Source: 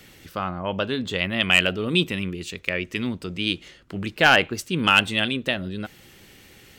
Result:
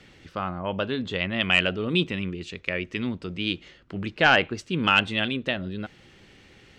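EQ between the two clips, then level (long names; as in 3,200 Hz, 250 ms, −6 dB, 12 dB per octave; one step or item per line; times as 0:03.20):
high-frequency loss of the air 110 metres
−1.5 dB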